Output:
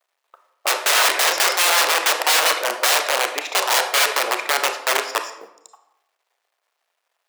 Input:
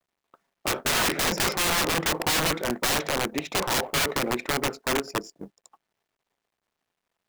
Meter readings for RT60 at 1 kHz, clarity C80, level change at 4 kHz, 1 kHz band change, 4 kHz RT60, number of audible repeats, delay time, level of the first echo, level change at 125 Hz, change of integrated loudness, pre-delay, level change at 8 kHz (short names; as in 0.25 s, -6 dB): 0.80 s, 11.5 dB, +8.0 dB, +8.5 dB, 0.55 s, none, none, none, under -30 dB, +7.5 dB, 26 ms, +8.0 dB